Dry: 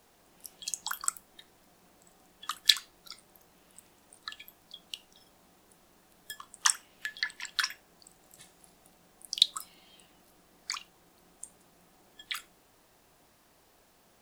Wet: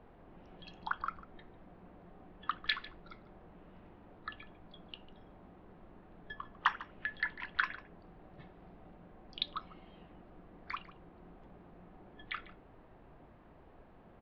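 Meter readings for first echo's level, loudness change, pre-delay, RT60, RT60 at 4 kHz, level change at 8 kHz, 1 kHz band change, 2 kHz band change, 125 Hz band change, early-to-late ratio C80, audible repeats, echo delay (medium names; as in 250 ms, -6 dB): -18.0 dB, -8.0 dB, no reverb, no reverb, no reverb, under -40 dB, +2.5 dB, -0.5 dB, no reading, no reverb, 1, 148 ms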